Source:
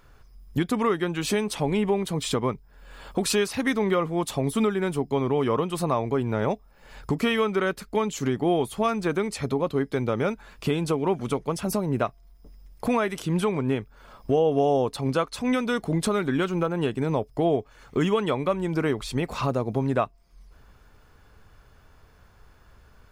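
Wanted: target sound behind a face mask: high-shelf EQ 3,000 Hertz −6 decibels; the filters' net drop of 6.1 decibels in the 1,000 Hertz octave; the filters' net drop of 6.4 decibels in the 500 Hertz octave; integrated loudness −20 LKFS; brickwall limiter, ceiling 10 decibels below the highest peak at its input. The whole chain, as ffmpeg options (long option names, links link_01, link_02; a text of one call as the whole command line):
ffmpeg -i in.wav -af "equalizer=frequency=500:width_type=o:gain=-7,equalizer=frequency=1000:width_type=o:gain=-5,alimiter=limit=-23.5dB:level=0:latency=1,highshelf=frequency=3000:gain=-6,volume=14dB" out.wav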